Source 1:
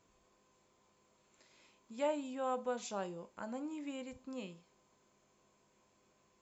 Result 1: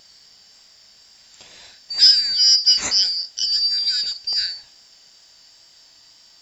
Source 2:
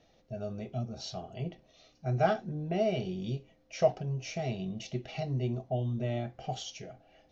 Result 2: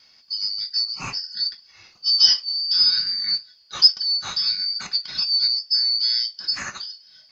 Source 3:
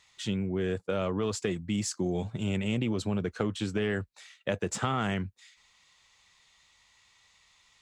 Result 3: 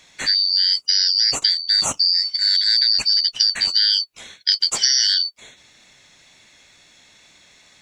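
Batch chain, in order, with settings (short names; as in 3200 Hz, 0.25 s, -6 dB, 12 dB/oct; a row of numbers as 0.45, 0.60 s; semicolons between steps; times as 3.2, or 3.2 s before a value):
four-band scrambler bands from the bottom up 4321; wow and flutter 16 cents; normalise peaks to -1.5 dBFS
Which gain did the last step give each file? +22.0, +11.0, +12.0 dB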